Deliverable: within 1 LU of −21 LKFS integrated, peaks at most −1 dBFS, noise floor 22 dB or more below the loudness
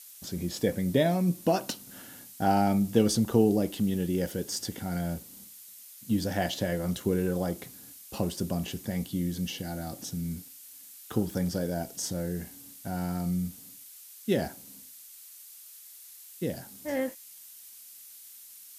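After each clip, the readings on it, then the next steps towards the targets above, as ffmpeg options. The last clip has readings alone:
background noise floor −50 dBFS; target noise floor −52 dBFS; integrated loudness −30.0 LKFS; sample peak −9.0 dBFS; target loudness −21.0 LKFS
→ -af "afftdn=noise_reduction=6:noise_floor=-50"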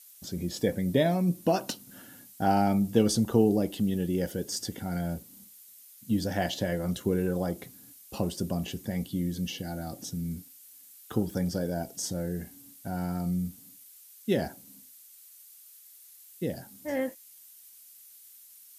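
background noise floor −53 dBFS; integrated loudness −30.0 LKFS; sample peak −9.0 dBFS; target loudness −21.0 LKFS
→ -af "volume=9dB,alimiter=limit=-1dB:level=0:latency=1"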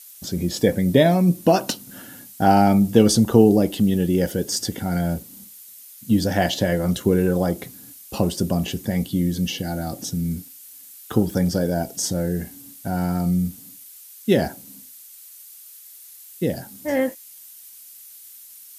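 integrated loudness −21.0 LKFS; sample peak −1.0 dBFS; background noise floor −44 dBFS

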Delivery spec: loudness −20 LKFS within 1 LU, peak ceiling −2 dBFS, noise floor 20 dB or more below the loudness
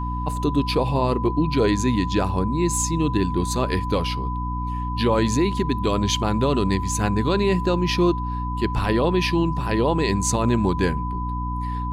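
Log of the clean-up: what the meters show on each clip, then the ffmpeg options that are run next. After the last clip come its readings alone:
mains hum 60 Hz; hum harmonics up to 300 Hz; level of the hum −25 dBFS; interfering tone 1,000 Hz; level of the tone −29 dBFS; integrated loudness −22.5 LKFS; sample peak −8.5 dBFS; target loudness −20.0 LKFS
→ -af "bandreject=frequency=60:width_type=h:width=6,bandreject=frequency=120:width_type=h:width=6,bandreject=frequency=180:width_type=h:width=6,bandreject=frequency=240:width_type=h:width=6,bandreject=frequency=300:width_type=h:width=6"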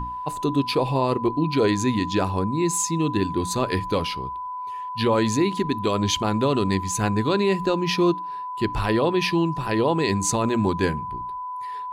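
mains hum none found; interfering tone 1,000 Hz; level of the tone −29 dBFS
→ -af "bandreject=frequency=1000:width=30"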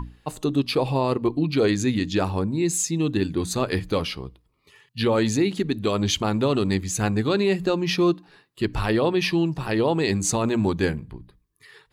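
interfering tone none found; integrated loudness −23.5 LKFS; sample peak −10.0 dBFS; target loudness −20.0 LKFS
→ -af "volume=3.5dB"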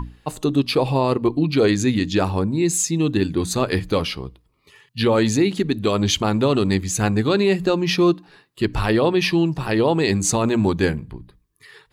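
integrated loudness −20.0 LKFS; sample peak −6.5 dBFS; background noise floor −62 dBFS

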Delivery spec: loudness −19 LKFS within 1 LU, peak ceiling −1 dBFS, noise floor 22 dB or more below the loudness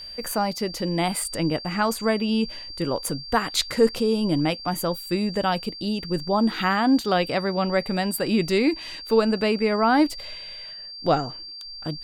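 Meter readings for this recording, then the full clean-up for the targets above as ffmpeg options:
interfering tone 4,700 Hz; level of the tone −36 dBFS; integrated loudness −24.0 LKFS; sample peak −7.0 dBFS; target loudness −19.0 LKFS
→ -af "bandreject=frequency=4700:width=30"
-af "volume=5dB"

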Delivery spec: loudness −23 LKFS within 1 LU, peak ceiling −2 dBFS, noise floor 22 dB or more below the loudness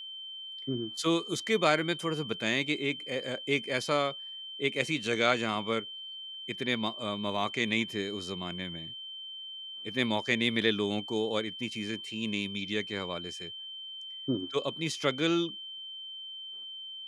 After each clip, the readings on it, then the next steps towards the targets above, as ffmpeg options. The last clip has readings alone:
interfering tone 3,100 Hz; level of the tone −40 dBFS; integrated loudness −32.0 LKFS; sample peak −11.0 dBFS; target loudness −23.0 LKFS
→ -af "bandreject=frequency=3100:width=30"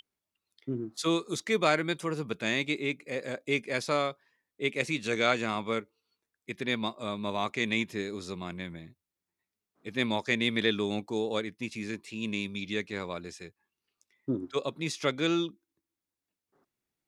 interfering tone none found; integrated loudness −31.5 LKFS; sample peak −11.5 dBFS; target loudness −23.0 LKFS
→ -af "volume=8.5dB"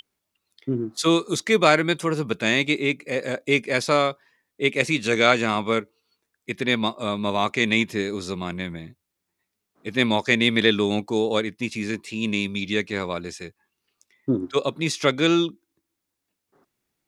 integrated loudness −23.0 LKFS; sample peak −3.0 dBFS; background noise floor −81 dBFS

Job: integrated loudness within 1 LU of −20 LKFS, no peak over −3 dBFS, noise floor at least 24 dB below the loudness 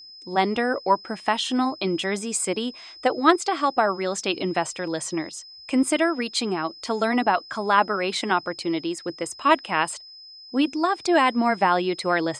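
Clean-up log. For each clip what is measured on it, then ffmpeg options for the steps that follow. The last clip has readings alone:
interfering tone 5,100 Hz; level of the tone −42 dBFS; integrated loudness −23.5 LKFS; sample peak −2.5 dBFS; target loudness −20.0 LKFS
→ -af "bandreject=frequency=5100:width=30"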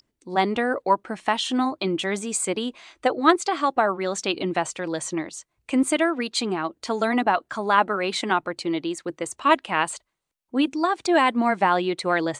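interfering tone none found; integrated loudness −24.0 LKFS; sample peak −2.5 dBFS; target loudness −20.0 LKFS
→ -af "volume=4dB,alimiter=limit=-3dB:level=0:latency=1"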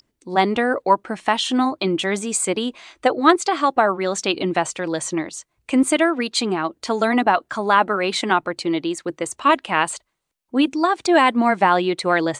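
integrated loudness −20.0 LKFS; sample peak −3.0 dBFS; background noise floor −73 dBFS

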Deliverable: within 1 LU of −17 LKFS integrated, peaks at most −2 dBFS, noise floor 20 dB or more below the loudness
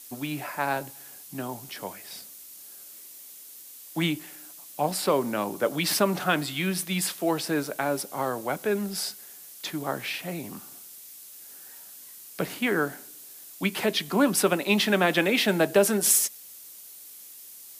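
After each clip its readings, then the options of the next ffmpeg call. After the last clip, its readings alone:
background noise floor −46 dBFS; target noise floor −47 dBFS; integrated loudness −26.5 LKFS; sample peak −7.5 dBFS; target loudness −17.0 LKFS
→ -af "afftdn=noise_reduction=6:noise_floor=-46"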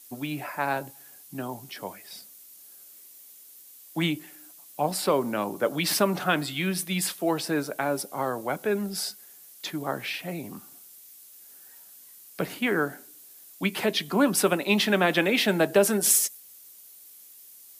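background noise floor −50 dBFS; integrated loudness −26.0 LKFS; sample peak −7.5 dBFS; target loudness −17.0 LKFS
→ -af "volume=9dB,alimiter=limit=-2dB:level=0:latency=1"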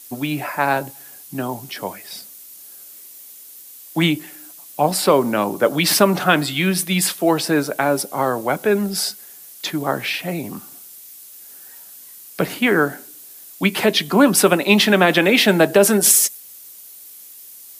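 integrated loudness −17.5 LKFS; sample peak −2.0 dBFS; background noise floor −41 dBFS

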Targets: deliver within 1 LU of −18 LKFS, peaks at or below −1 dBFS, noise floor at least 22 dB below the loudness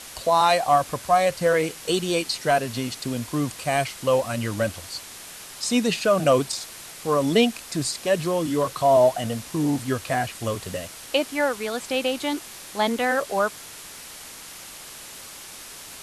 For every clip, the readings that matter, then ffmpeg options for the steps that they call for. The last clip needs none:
background noise floor −41 dBFS; target noise floor −46 dBFS; integrated loudness −23.5 LKFS; sample peak −7.5 dBFS; target loudness −18.0 LKFS
→ -af "afftdn=noise_reduction=6:noise_floor=-41"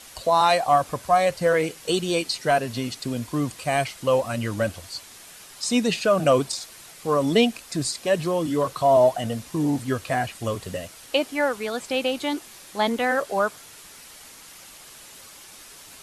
background noise floor −46 dBFS; integrated loudness −23.5 LKFS; sample peak −7.5 dBFS; target loudness −18.0 LKFS
→ -af "volume=5.5dB"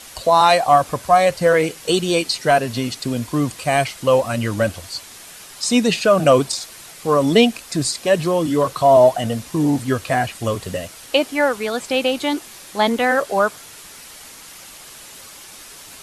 integrated loudness −18.0 LKFS; sample peak −2.0 dBFS; background noise floor −40 dBFS

